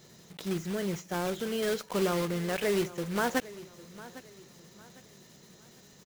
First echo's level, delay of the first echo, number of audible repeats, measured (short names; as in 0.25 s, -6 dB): -18.0 dB, 0.804 s, 2